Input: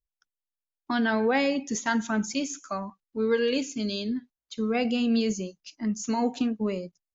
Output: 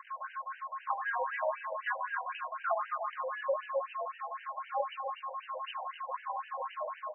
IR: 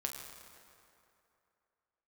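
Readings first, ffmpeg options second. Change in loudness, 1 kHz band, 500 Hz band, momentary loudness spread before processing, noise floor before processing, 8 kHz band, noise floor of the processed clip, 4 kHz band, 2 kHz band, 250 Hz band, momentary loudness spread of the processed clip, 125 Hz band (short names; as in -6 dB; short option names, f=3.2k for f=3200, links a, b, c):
-9.0 dB, +0.5 dB, -8.5 dB, 11 LU, under -85 dBFS, n/a, -52 dBFS, -16.0 dB, -5.5 dB, under -40 dB, 7 LU, under -40 dB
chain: -filter_complex "[0:a]aeval=exprs='val(0)+0.5*0.0299*sgn(val(0))':c=same,equalizer=f=2.3k:t=o:w=1.1:g=-6,acompressor=threshold=-32dB:ratio=6,aeval=exprs='val(0)+0.00501*sin(2*PI*1000*n/s)':c=same,highpass=f=220:t=q:w=0.5412,highpass=f=220:t=q:w=1.307,lowpass=f=3.4k:t=q:w=0.5176,lowpass=f=3.4k:t=q:w=0.7071,lowpass=f=3.4k:t=q:w=1.932,afreqshift=77,aecho=1:1:296:0.398[a];[1:a]atrim=start_sample=2205,afade=t=out:st=0.25:d=0.01,atrim=end_sample=11466[b];[a][b]afir=irnorm=-1:irlink=0,afftfilt=real='re*between(b*sr/1024,680*pow(2200/680,0.5+0.5*sin(2*PI*3.9*pts/sr))/1.41,680*pow(2200/680,0.5+0.5*sin(2*PI*3.9*pts/sr))*1.41)':imag='im*between(b*sr/1024,680*pow(2200/680,0.5+0.5*sin(2*PI*3.9*pts/sr))/1.41,680*pow(2200/680,0.5+0.5*sin(2*PI*3.9*pts/sr))*1.41)':win_size=1024:overlap=0.75,volume=7dB"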